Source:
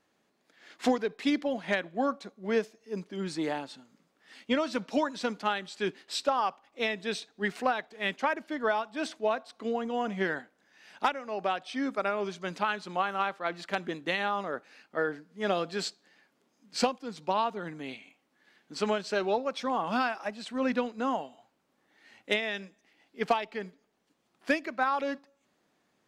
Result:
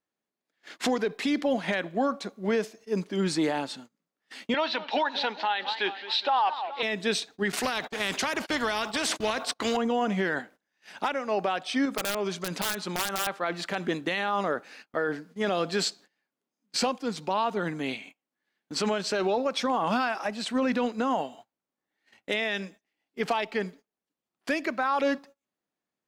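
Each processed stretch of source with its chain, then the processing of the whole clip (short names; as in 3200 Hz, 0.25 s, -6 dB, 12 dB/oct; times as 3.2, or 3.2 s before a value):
4.54–6.83 speaker cabinet 490–4100 Hz, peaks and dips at 550 Hz -4 dB, 860 Hz +10 dB, 1200 Hz -4 dB, 1800 Hz +4 dB, 2800 Hz +4 dB, 3900 Hz +8 dB + warbling echo 0.207 s, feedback 57%, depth 217 cents, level -18 dB
7.52–9.77 gate -53 dBFS, range -33 dB + spectral compressor 2:1
11.85–13.27 wrapped overs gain 22 dB + compressor 5:1, threshold -33 dBFS
whole clip: gate -54 dBFS, range -25 dB; high shelf 8700 Hz +4 dB; limiter -25.5 dBFS; gain +8 dB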